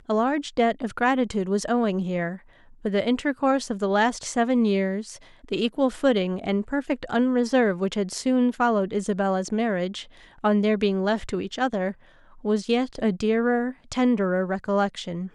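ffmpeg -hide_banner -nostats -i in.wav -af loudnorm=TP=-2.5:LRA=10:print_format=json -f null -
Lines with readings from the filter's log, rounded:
"input_i" : "-24.4",
"input_tp" : "-9.1",
"input_lra" : "1.5",
"input_thresh" : "-34.6",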